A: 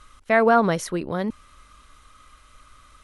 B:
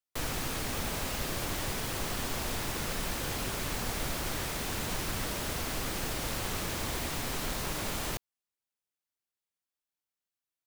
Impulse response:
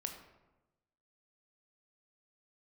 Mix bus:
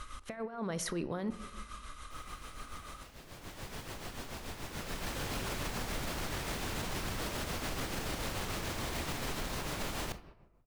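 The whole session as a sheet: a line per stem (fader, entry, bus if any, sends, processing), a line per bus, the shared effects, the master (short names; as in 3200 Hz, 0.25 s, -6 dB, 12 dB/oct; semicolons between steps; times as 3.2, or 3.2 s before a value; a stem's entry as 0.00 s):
-3.0 dB, 0.00 s, send -3.5 dB, negative-ratio compressor -26 dBFS, ratio -0.5; limiter -22 dBFS, peak gain reduction 11 dB
3.15 s -19.5 dB -> 3.73 s -10 dB -> 4.62 s -10 dB -> 5.22 s -0.5 dB, 1.95 s, send -3.5 dB, high shelf 7500 Hz -7 dB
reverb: on, RT60 1.1 s, pre-delay 17 ms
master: tremolo 6.9 Hz, depth 54%; limiter -27.5 dBFS, peak gain reduction 7.5 dB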